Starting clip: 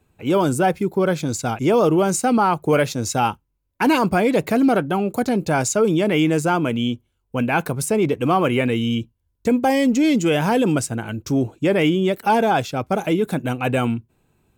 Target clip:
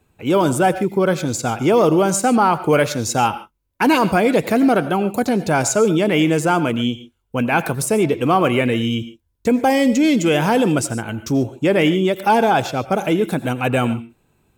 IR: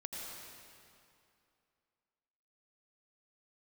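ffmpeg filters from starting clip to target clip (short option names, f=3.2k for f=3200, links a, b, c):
-filter_complex "[0:a]asplit=2[a][b];[1:a]atrim=start_sample=2205,afade=t=out:st=0.2:d=0.01,atrim=end_sample=9261,lowshelf=f=200:g=-12[c];[b][c]afir=irnorm=-1:irlink=0,volume=-3.5dB[d];[a][d]amix=inputs=2:normalize=0"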